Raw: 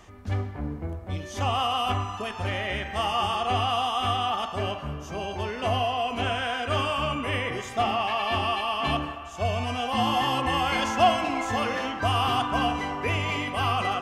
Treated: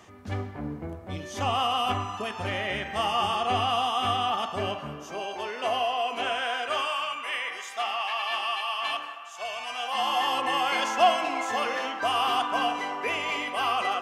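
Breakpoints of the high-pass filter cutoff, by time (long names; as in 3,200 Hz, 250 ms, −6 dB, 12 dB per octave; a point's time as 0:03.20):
0:04.73 120 Hz
0:05.26 410 Hz
0:06.55 410 Hz
0:07.06 1,000 Hz
0:09.64 1,000 Hz
0:10.48 390 Hz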